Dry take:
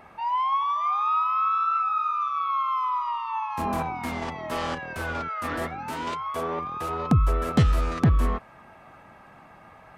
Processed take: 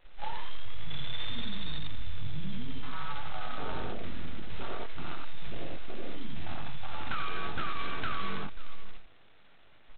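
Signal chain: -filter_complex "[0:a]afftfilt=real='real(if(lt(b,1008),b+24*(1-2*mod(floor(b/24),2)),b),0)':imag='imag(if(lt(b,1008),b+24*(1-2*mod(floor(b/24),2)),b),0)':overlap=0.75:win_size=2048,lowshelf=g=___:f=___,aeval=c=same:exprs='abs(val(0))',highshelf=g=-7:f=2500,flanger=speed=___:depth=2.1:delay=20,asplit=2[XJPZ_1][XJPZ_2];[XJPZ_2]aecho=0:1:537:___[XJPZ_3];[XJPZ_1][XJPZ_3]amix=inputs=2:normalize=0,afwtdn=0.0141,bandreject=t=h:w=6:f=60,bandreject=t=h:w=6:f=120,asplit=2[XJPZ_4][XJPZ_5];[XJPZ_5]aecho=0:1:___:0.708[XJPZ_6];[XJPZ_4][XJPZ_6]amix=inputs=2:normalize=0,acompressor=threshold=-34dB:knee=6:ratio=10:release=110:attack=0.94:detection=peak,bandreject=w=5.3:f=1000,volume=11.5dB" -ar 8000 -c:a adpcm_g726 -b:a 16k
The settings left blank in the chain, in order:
-8.5, 420, 1.2, 0.141, 87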